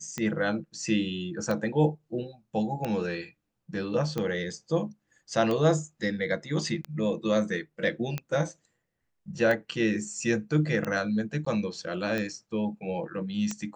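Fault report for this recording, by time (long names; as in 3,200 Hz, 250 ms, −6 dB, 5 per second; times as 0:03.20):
scratch tick 45 rpm −17 dBFS
0:11.45–0:11.46: drop-out 14 ms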